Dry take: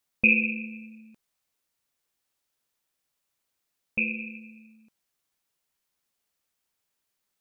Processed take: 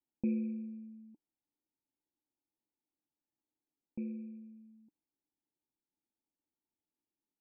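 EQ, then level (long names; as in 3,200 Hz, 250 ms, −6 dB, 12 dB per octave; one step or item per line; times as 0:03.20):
formant resonators in series u
+4.5 dB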